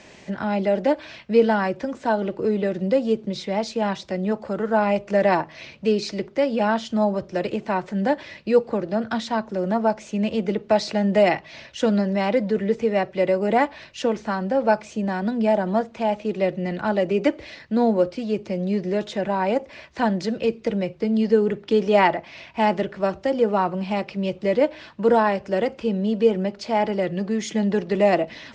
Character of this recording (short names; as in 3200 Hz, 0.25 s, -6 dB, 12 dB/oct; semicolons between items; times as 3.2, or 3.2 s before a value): noise floor -47 dBFS; spectral tilt -5.0 dB/oct